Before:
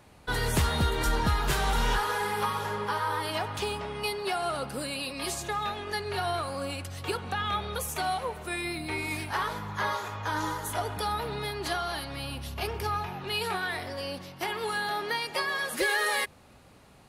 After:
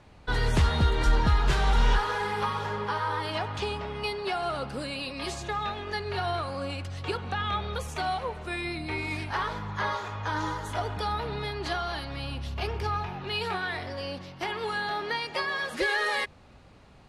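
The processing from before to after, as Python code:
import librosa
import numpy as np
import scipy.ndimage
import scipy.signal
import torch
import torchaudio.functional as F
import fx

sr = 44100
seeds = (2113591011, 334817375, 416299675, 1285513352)

y = scipy.signal.sosfilt(scipy.signal.butter(2, 5600.0, 'lowpass', fs=sr, output='sos'), x)
y = fx.low_shelf(y, sr, hz=68.0, db=9.5)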